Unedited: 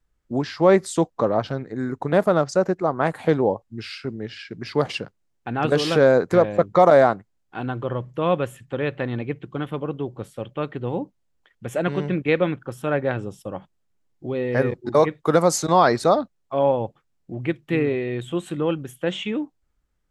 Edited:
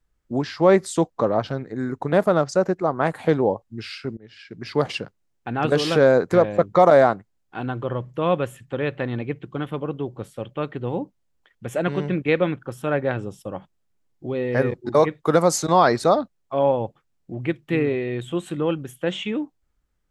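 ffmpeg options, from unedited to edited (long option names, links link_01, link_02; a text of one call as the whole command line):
ffmpeg -i in.wav -filter_complex "[0:a]asplit=2[link_01][link_02];[link_01]atrim=end=4.17,asetpts=PTS-STARTPTS,afade=type=out:start_time=4.166:duration=0.004:curve=hsin:silence=0.0630957[link_03];[link_02]atrim=start=4.17,asetpts=PTS-STARTPTS,afade=type=in:duration=0.55:silence=0.0630957[link_04];[link_03][link_04]concat=n=2:v=0:a=1" out.wav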